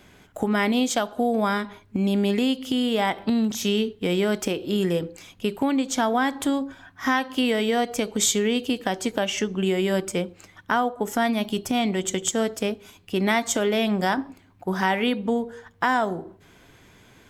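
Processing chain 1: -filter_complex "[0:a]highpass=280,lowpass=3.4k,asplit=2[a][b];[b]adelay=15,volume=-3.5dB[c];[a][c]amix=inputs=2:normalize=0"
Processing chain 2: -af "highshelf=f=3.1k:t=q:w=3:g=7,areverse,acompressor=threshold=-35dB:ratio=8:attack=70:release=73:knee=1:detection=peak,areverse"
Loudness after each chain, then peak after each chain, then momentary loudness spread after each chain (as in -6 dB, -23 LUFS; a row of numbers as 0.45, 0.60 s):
-25.0, -32.0 LUFS; -5.5, -12.0 dBFS; 8, 8 LU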